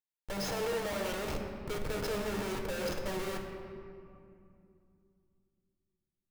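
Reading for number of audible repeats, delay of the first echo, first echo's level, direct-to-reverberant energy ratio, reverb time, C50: no echo, no echo, no echo, 1.5 dB, 2.5 s, 4.5 dB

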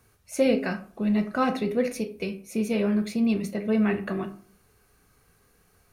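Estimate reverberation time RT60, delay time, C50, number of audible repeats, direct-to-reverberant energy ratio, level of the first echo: 0.45 s, no echo, 13.5 dB, no echo, 8.0 dB, no echo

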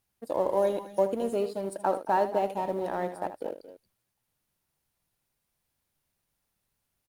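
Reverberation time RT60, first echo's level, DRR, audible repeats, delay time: no reverb, -11.5 dB, no reverb, 2, 77 ms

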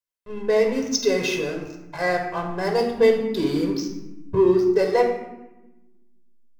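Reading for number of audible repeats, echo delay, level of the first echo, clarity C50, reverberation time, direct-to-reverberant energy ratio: no echo, no echo, no echo, 6.0 dB, 1.0 s, 2.5 dB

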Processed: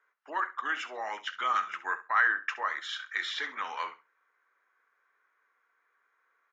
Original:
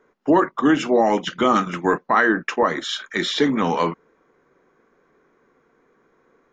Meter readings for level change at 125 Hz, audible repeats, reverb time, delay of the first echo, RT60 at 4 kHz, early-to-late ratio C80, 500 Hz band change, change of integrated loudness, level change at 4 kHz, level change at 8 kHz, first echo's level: under -40 dB, 2, no reverb, 67 ms, no reverb, no reverb, -25.0 dB, -11.5 dB, -10.5 dB, no reading, -15.0 dB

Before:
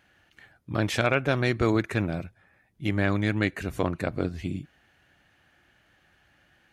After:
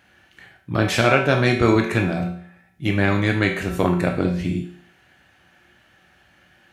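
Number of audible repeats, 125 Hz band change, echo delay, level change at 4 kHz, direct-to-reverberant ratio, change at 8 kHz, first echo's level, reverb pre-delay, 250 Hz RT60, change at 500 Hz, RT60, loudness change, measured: no echo, +6.5 dB, no echo, +7.5 dB, 2.0 dB, +7.5 dB, no echo, 15 ms, 0.55 s, +7.0 dB, 0.55 s, +7.0 dB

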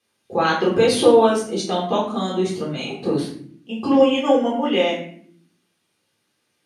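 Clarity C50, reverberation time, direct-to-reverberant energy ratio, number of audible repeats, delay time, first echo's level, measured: 5.0 dB, 0.60 s, -5.0 dB, no echo, no echo, no echo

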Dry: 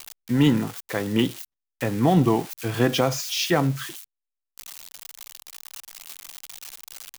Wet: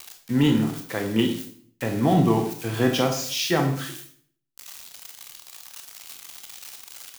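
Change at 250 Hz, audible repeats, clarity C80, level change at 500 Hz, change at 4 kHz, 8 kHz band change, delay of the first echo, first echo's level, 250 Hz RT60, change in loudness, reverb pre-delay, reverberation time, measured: 0.0 dB, no echo, 11.5 dB, -0.5 dB, 0.0 dB, -0.5 dB, no echo, no echo, 0.65 s, -0.5 dB, 23 ms, 0.55 s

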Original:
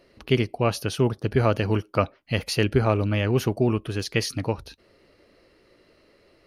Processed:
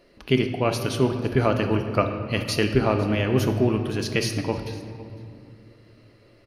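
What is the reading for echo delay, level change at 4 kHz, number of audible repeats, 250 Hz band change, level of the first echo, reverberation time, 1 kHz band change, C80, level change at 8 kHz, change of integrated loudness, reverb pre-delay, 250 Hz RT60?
505 ms, +1.0 dB, 1, +2.0 dB, -21.5 dB, 2.3 s, +1.0 dB, 8.5 dB, +0.5 dB, +1.0 dB, 3 ms, 3.8 s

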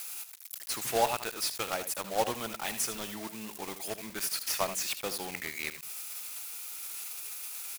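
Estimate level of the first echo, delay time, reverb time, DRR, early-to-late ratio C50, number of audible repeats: -11.0 dB, 78 ms, no reverb, no reverb, no reverb, 1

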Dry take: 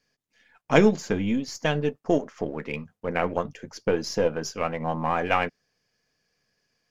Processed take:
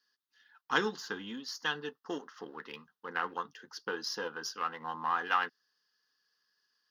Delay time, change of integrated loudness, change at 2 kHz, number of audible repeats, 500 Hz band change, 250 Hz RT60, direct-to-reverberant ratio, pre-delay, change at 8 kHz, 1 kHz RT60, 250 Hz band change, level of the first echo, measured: no echo, -9.5 dB, -4.0 dB, no echo, -16.0 dB, no reverb, no reverb, no reverb, no reading, no reverb, -17.0 dB, no echo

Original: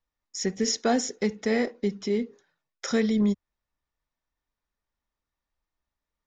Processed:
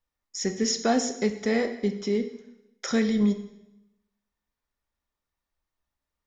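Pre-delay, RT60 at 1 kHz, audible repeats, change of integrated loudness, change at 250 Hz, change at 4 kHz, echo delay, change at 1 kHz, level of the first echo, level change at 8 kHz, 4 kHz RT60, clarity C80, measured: 10 ms, 0.90 s, no echo, +0.5 dB, +1.0 dB, +0.5 dB, no echo, +1.0 dB, no echo, +0.5 dB, 0.85 s, 13.5 dB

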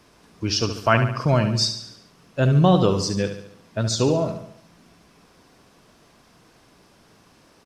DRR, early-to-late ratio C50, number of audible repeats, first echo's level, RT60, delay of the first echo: no reverb, no reverb, 5, -9.0 dB, no reverb, 71 ms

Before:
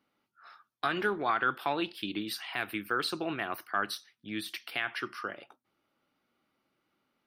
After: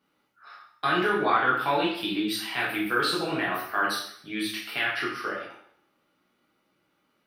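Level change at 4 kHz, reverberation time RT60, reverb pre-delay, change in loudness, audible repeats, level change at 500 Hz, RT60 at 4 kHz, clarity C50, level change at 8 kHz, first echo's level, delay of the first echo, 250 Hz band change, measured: +7.0 dB, 0.65 s, 4 ms, +6.5 dB, no echo, +6.5 dB, 0.60 s, 4.0 dB, +7.0 dB, no echo, no echo, +7.0 dB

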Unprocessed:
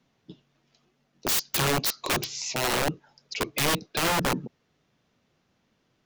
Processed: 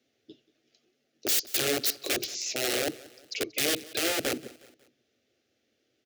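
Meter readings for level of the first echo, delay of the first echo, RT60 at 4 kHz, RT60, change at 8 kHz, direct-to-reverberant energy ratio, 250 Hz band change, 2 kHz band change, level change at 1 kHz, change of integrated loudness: -20.5 dB, 182 ms, no reverb, no reverb, 0.0 dB, no reverb, -3.5 dB, -3.5 dB, -11.0 dB, -2.0 dB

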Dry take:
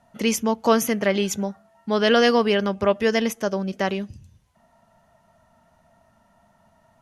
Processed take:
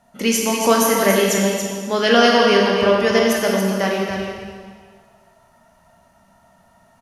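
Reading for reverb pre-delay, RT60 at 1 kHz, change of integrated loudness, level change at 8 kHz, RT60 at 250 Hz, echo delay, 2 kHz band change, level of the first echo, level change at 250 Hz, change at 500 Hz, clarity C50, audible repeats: 12 ms, 1.8 s, +5.0 dB, +8.5 dB, 1.7 s, 281 ms, +6.5 dB, -6.5 dB, +4.0 dB, +5.0 dB, -0.5 dB, 1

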